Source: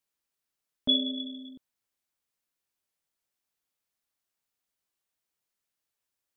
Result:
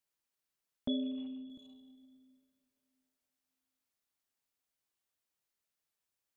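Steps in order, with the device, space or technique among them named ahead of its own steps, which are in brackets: saturated reverb return (on a send at -12 dB: reverberation RT60 2.4 s, pre-delay 37 ms + saturation -35.5 dBFS, distortion -6 dB); 0.88–1.50 s: on the sum: Chebyshev low-pass 2.8 kHz, order 5; trim -3 dB

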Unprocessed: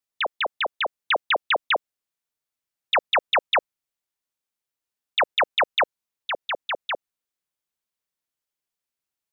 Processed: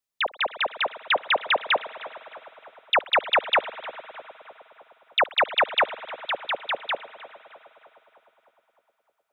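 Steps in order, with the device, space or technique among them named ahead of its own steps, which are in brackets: dub delay into a spring reverb (filtered feedback delay 307 ms, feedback 64%, low-pass 2 kHz, level -15 dB; spring tank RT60 3.6 s, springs 51 ms, chirp 35 ms, DRR 17.5 dB)

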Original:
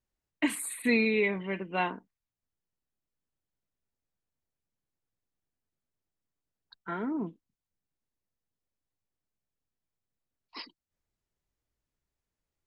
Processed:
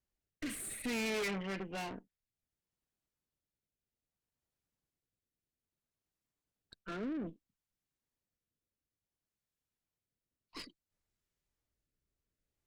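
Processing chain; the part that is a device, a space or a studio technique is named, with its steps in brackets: overdriven rotary cabinet (valve stage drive 39 dB, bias 0.75; rotary cabinet horn 0.6 Hz); trim +5 dB

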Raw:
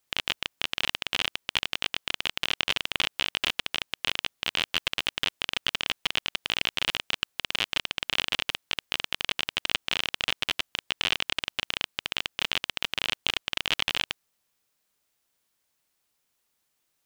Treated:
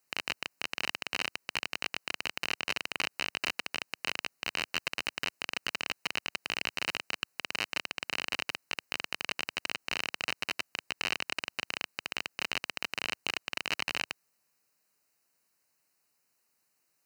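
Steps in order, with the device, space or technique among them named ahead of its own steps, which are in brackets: PA system with an anti-feedback notch (high-pass 110 Hz 12 dB/octave; Butterworth band-stop 3.4 kHz, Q 3.5; peak limiter -14.5 dBFS, peak gain reduction 9 dB)

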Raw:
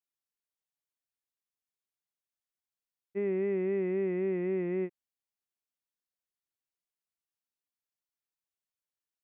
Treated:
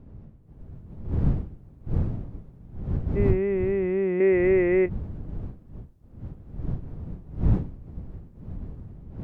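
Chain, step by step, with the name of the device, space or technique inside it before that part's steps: 4.20–4.86 s: graphic EQ 125/250/500/2000 Hz -11/+3/+8/+10 dB; smartphone video outdoors (wind noise 120 Hz -36 dBFS; level rider gain up to 10.5 dB; trim -4 dB; AAC 96 kbps 48 kHz)

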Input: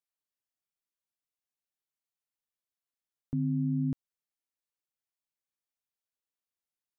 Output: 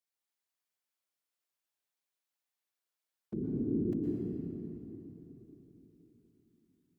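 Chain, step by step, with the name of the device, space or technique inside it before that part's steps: whispering ghost (whisper effect; high-pass 400 Hz 6 dB/octave; reverberation RT60 3.7 s, pre-delay 106 ms, DRR -2 dB)

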